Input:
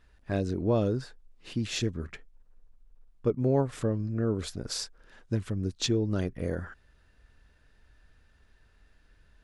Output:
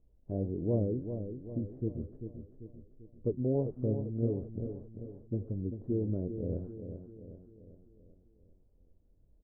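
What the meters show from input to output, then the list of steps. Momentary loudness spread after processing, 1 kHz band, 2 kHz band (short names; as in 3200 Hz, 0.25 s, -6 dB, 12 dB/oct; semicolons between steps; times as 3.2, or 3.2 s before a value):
18 LU, under -10 dB, under -40 dB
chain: inverse Chebyshev low-pass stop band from 2600 Hz, stop band 70 dB; flange 1.6 Hz, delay 5.9 ms, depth 6.8 ms, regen +77%; feedback echo 0.392 s, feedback 49%, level -8.5 dB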